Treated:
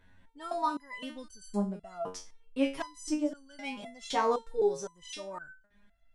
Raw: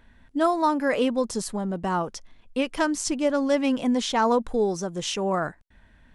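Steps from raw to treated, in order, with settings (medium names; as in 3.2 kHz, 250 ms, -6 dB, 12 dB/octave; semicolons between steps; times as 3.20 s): resonator arpeggio 3.9 Hz 92–1500 Hz; trim +4 dB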